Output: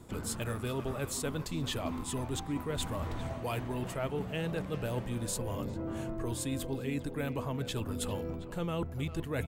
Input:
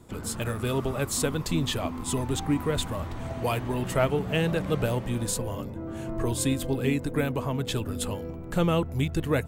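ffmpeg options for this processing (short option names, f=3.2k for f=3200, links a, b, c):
-filter_complex "[0:a]areverse,acompressor=threshold=-32dB:ratio=6,areverse,asplit=2[a][b];[b]adelay=400,highpass=300,lowpass=3.4k,asoftclip=type=hard:threshold=-31.5dB,volume=-12dB[c];[a][c]amix=inputs=2:normalize=0"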